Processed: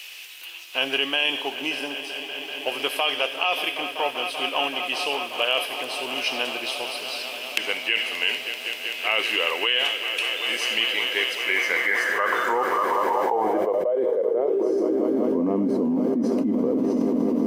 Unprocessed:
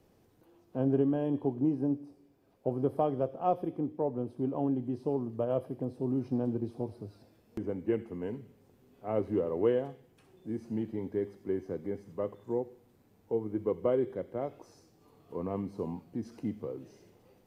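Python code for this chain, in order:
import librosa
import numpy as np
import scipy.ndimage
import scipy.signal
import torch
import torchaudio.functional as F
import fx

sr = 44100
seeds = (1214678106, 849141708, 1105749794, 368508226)

y = fx.echo_swell(x, sr, ms=193, loudest=5, wet_db=-16.5)
y = fx.filter_sweep_highpass(y, sr, from_hz=2700.0, to_hz=250.0, start_s=11.33, end_s=15.31, q=5.5)
y = fx.env_flatten(y, sr, amount_pct=100)
y = y * 10.0 ** (-8.0 / 20.0)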